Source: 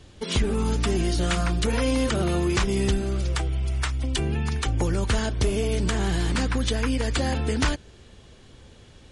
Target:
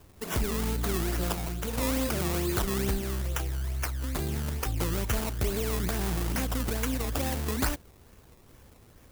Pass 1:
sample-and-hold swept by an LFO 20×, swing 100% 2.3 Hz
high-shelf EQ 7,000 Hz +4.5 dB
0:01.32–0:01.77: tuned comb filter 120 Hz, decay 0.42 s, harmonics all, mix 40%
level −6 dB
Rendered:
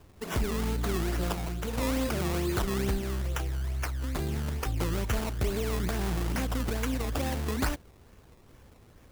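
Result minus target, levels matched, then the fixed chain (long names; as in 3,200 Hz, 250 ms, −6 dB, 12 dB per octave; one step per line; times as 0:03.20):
8,000 Hz band −3.5 dB
sample-and-hold swept by an LFO 20×, swing 100% 2.3 Hz
high-shelf EQ 7,000 Hz +12.5 dB
0:01.32–0:01.77: tuned comb filter 120 Hz, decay 0.42 s, harmonics all, mix 40%
level −6 dB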